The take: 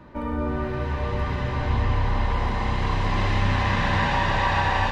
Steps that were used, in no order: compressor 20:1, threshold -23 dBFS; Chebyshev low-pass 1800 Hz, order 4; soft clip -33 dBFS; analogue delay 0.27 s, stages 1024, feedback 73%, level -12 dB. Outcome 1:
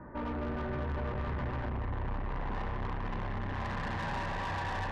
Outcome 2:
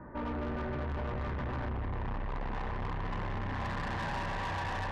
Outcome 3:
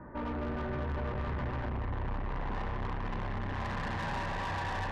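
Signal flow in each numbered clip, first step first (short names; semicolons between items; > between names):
compressor > Chebyshev low-pass > soft clip > analogue delay; Chebyshev low-pass > compressor > analogue delay > soft clip; Chebyshev low-pass > compressor > soft clip > analogue delay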